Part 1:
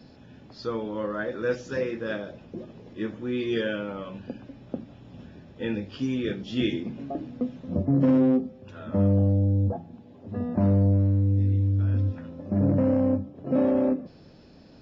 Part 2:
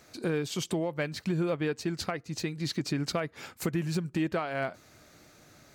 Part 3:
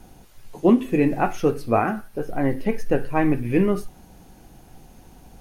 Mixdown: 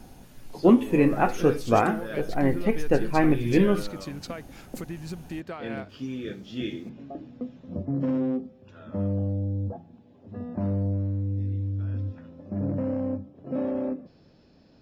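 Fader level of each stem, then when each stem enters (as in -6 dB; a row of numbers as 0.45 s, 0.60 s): -6.0 dB, -6.5 dB, -1.0 dB; 0.00 s, 1.15 s, 0.00 s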